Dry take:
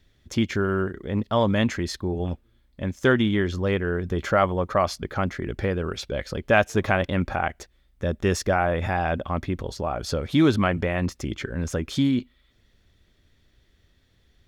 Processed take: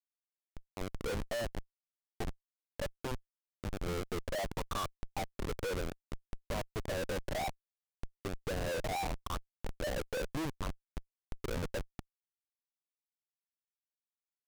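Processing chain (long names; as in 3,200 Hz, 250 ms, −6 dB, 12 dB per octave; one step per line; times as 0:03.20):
tilt shelving filter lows +10 dB, about 760 Hz
downward compressor 3 to 1, threshold −21 dBFS, peak gain reduction 10.5 dB
LFO wah 0.67 Hz 490–1,200 Hz, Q 8
comparator with hysteresis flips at −42 dBFS
highs frequency-modulated by the lows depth 0.44 ms
level +7 dB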